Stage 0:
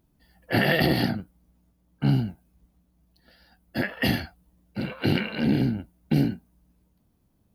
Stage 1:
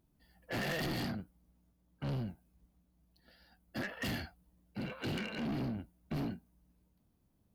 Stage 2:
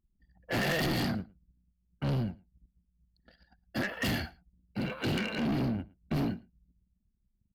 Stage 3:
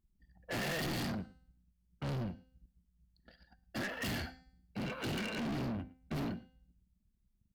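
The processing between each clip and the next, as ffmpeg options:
-af "asoftclip=type=tanh:threshold=-27dB,volume=-6.5dB"
-af "anlmdn=0.0000251,aecho=1:1:111:0.0631,volume=6.5dB"
-af "bandreject=f=257.9:t=h:w=4,bandreject=f=515.8:t=h:w=4,bandreject=f=773.7:t=h:w=4,bandreject=f=1.0316k:t=h:w=4,bandreject=f=1.2895k:t=h:w=4,bandreject=f=1.5474k:t=h:w=4,bandreject=f=1.8053k:t=h:w=4,bandreject=f=2.0632k:t=h:w=4,bandreject=f=2.3211k:t=h:w=4,bandreject=f=2.579k:t=h:w=4,bandreject=f=2.8369k:t=h:w=4,bandreject=f=3.0948k:t=h:w=4,bandreject=f=3.3527k:t=h:w=4,bandreject=f=3.6106k:t=h:w=4,bandreject=f=3.8685k:t=h:w=4,bandreject=f=4.1264k:t=h:w=4,bandreject=f=4.3843k:t=h:w=4,bandreject=f=4.6422k:t=h:w=4,bandreject=f=4.9001k:t=h:w=4,bandreject=f=5.158k:t=h:w=4,bandreject=f=5.4159k:t=h:w=4,bandreject=f=5.6738k:t=h:w=4,bandreject=f=5.9317k:t=h:w=4,bandreject=f=6.1896k:t=h:w=4,bandreject=f=6.4475k:t=h:w=4,bandreject=f=6.7054k:t=h:w=4,bandreject=f=6.9633k:t=h:w=4,bandreject=f=7.2212k:t=h:w=4,bandreject=f=7.4791k:t=h:w=4,bandreject=f=7.737k:t=h:w=4,bandreject=f=7.9949k:t=h:w=4,bandreject=f=8.2528k:t=h:w=4,bandreject=f=8.5107k:t=h:w=4,bandreject=f=8.7686k:t=h:w=4,asoftclip=type=tanh:threshold=-35dB"

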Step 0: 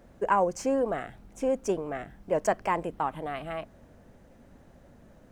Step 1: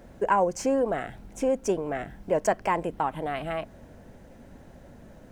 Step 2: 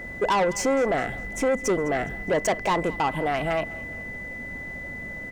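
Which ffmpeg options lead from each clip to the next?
-filter_complex "[0:a]bandreject=f=1.2k:w=12,asplit=2[a][b];[b]acompressor=threshold=-35dB:ratio=6,volume=-0.5dB[c];[a][c]amix=inputs=2:normalize=0"
-af "asoftclip=type=tanh:threshold=-26dB,aeval=exprs='val(0)+0.00708*sin(2*PI*2000*n/s)':c=same,aecho=1:1:206|412|618:0.1|0.045|0.0202,volume=7.5dB"

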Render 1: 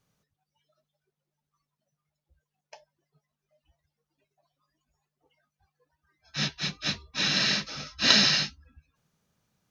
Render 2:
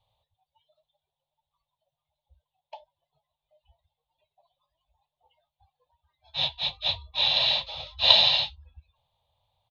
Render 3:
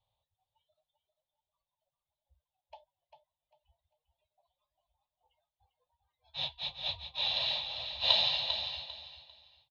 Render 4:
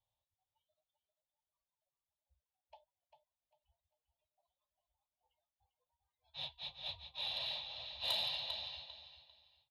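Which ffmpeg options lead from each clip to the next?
-af "firequalizer=gain_entry='entry(100,0);entry(170,-25);entry(350,-28);entry(540,-2);entry(900,5);entry(1400,-23);entry(2100,-12);entry(3600,5);entry(5500,-26);entry(9200,-16)':delay=0.05:min_phase=1,volume=5.5dB"
-af "aecho=1:1:397|794|1191:0.398|0.0995|0.0249,volume=-9dB"
-af "asoftclip=type=tanh:threshold=-19.5dB,volume=-8dB"

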